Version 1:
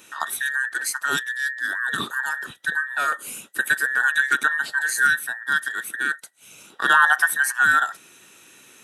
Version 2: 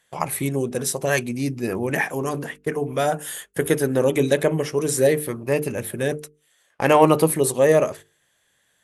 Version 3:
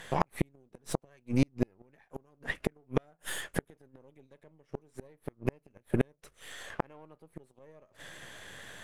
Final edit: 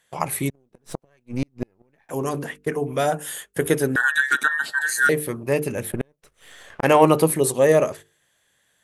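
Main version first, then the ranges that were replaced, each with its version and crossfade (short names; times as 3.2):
2
0.5–2.09 from 3
3.96–5.09 from 1
5.92–6.83 from 3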